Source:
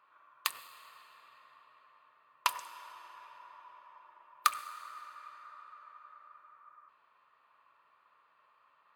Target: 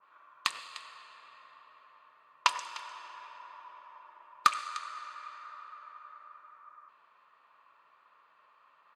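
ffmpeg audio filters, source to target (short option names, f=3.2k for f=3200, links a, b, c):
-af "lowpass=f=7.4k:w=0.5412,lowpass=f=7.4k:w=1.3066,equalizer=f=74:w=1.6:g=-13.5,aecho=1:1:301:0.119,asoftclip=type=hard:threshold=-12.5dB,adynamicequalizer=threshold=0.00251:dfrequency=1800:dqfactor=0.7:tfrequency=1800:tqfactor=0.7:attack=5:release=100:ratio=0.375:range=2:mode=boostabove:tftype=highshelf,volume=4dB"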